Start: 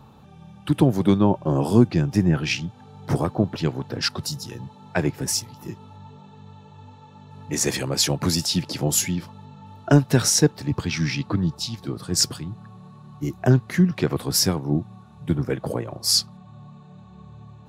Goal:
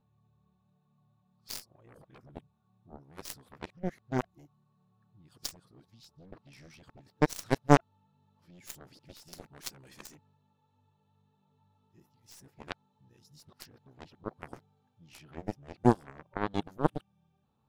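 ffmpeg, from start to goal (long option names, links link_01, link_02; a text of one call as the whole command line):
ffmpeg -i in.wav -af "areverse,aeval=exprs='0.75*(cos(1*acos(clip(val(0)/0.75,-1,1)))-cos(1*PI/2))+0.0841*(cos(2*acos(clip(val(0)/0.75,-1,1)))-cos(2*PI/2))+0.266*(cos(3*acos(clip(val(0)/0.75,-1,1)))-cos(3*PI/2))+0.00422*(cos(8*acos(clip(val(0)/0.75,-1,1)))-cos(8*PI/2))':channel_layout=same,volume=-2.5dB" out.wav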